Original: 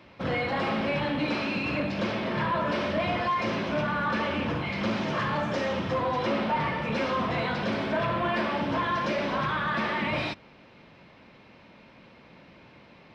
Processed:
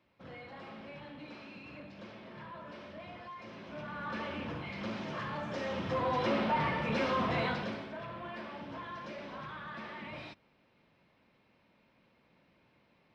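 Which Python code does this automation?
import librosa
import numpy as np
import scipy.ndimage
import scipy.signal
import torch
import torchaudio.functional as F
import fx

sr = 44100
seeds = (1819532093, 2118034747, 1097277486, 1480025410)

y = fx.gain(x, sr, db=fx.line((3.5, -20.0), (4.16, -10.5), (5.41, -10.5), (6.14, -3.5), (7.48, -3.5), (7.91, -16.0)))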